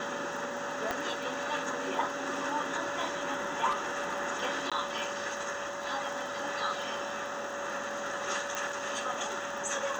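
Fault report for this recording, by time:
crackle 40/s -40 dBFS
tone 570 Hz -39 dBFS
0.91 pop -16 dBFS
3.7–4.21 clipped -27.5 dBFS
4.7–4.72 gap 16 ms
8.55 pop

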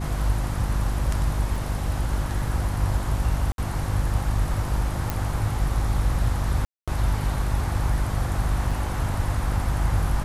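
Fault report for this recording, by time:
hum 50 Hz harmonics 7 -28 dBFS
1.56 gap 3.7 ms
3.52–3.58 gap 62 ms
5.1 pop
6.65–6.88 gap 0.226 s
8.71 gap 4.1 ms

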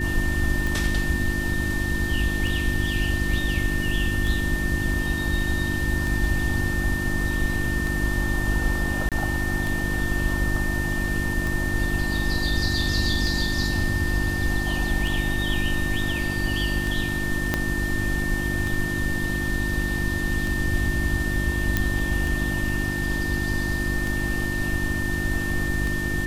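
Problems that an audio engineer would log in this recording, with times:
hum 50 Hz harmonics 7 -29 dBFS
tick 33 1/3 rpm
tone 1800 Hz -28 dBFS
9.09–9.12 gap 27 ms
17.54 pop -7 dBFS
21.77 pop -7 dBFS

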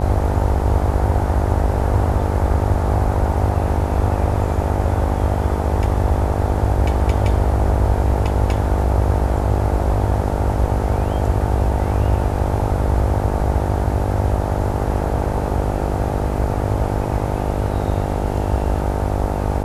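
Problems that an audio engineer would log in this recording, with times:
buzz 50 Hz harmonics 18 -23 dBFS

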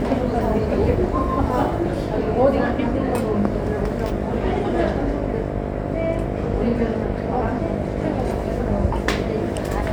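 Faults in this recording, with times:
buzz 50 Hz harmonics 14 -27 dBFS

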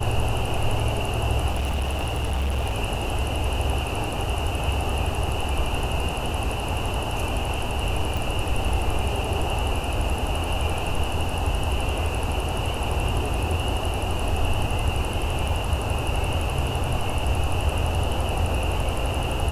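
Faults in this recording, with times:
1.5–2.75 clipped -21 dBFS
8.17 pop
15.49 gap 2.1 ms

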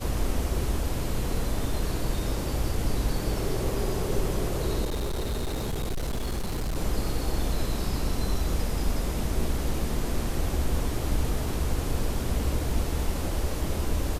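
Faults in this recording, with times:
4.84–6.78 clipped -25.5 dBFS

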